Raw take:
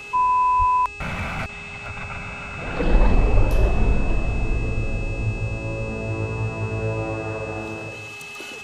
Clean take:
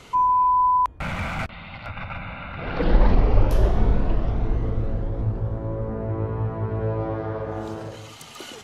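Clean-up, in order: de-hum 410.2 Hz, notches 21; notch 2600 Hz, Q 30; 0.58–0.7 HPF 140 Hz 24 dB/oct

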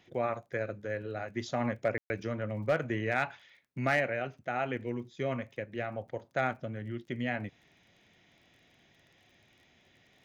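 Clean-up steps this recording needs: clip repair -19 dBFS; de-click; room tone fill 1.98–2.1

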